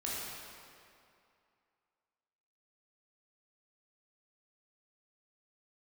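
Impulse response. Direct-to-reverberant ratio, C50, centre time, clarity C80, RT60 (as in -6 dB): -7.0 dB, -3.0 dB, 155 ms, -1.0 dB, 2.5 s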